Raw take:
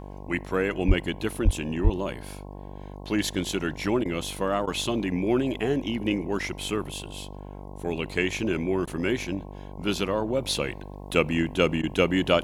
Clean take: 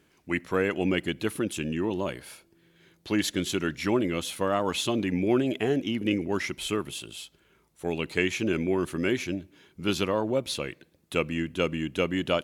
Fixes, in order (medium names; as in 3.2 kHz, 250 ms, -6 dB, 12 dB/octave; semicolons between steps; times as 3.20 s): de-hum 49 Hz, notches 22; 0.87–0.99 s: high-pass 140 Hz 24 dB/octave; 1.44–1.56 s: high-pass 140 Hz 24 dB/octave; 1.83–1.95 s: high-pass 140 Hz 24 dB/octave; interpolate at 4.04/4.66/8.86/11.82 s, 12 ms; 10.40 s: gain correction -4.5 dB